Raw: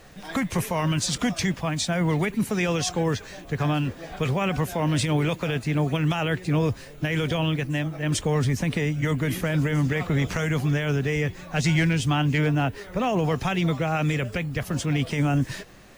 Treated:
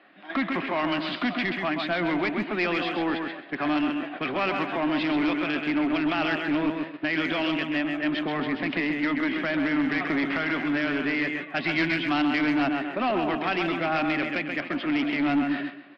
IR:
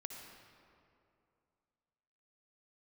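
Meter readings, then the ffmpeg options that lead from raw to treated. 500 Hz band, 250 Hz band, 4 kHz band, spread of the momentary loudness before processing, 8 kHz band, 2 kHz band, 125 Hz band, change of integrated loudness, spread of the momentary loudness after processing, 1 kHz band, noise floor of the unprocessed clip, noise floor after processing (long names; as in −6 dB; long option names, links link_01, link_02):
−2.0 dB, +1.0 dB, −1.0 dB, 5 LU, below −25 dB, +3.5 dB, −16.5 dB, −1.0 dB, 4 LU, +1.5 dB, −43 dBFS, −41 dBFS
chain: -filter_complex "[0:a]highpass=frequency=280:width=0.5412,highpass=frequency=280:width=1.3066,equalizer=frequency=290:width_type=q:width=4:gain=4,equalizer=frequency=480:width_type=q:width=4:gain=-7,equalizer=frequency=910:width_type=q:width=4:gain=-5,lowpass=frequency=3000:width=0.5412,lowpass=frequency=3000:width=1.3066,asplit=2[link_01][link_02];[link_02]aecho=0:1:132|264|396|528|660:0.501|0.21|0.0884|0.0371|0.0156[link_03];[link_01][link_03]amix=inputs=2:normalize=0,agate=range=-7dB:threshold=-37dB:ratio=16:detection=peak,aresample=11025,asoftclip=type=tanh:threshold=-23.5dB,aresample=44100,aeval=exprs='0.0944*(cos(1*acos(clip(val(0)/0.0944,-1,1)))-cos(1*PI/2))+0.00376*(cos(2*acos(clip(val(0)/0.0944,-1,1)))-cos(2*PI/2))':channel_layout=same,equalizer=frequency=460:width_type=o:width=0.27:gain=-9,asplit=2[link_04][link_05];[link_05]adelay=150,highpass=300,lowpass=3400,asoftclip=type=hard:threshold=-28.5dB,volume=-18dB[link_06];[link_04][link_06]amix=inputs=2:normalize=0,volume=5dB"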